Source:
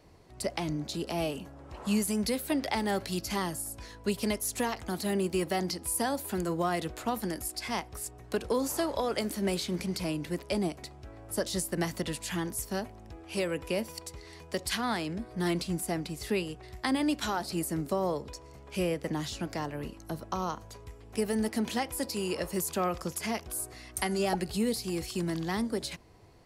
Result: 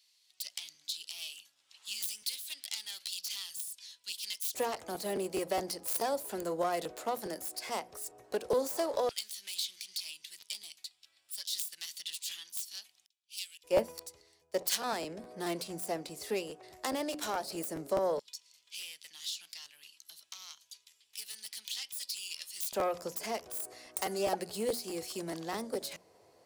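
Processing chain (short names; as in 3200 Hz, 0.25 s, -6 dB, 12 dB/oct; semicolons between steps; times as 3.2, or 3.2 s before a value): self-modulated delay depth 0.12 ms; 10.88–11.45 notch 6300 Hz, Q 7.7; low shelf 98 Hz +10.5 dB; notches 60/120/180/240/300 Hz; LFO high-pass square 0.11 Hz 530–3400 Hz; tone controls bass +13 dB, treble +7 dB; crackling interface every 0.21 s, samples 512, repeat, from 0.53; 13.06–14.93 three-band expander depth 100%; gain -6.5 dB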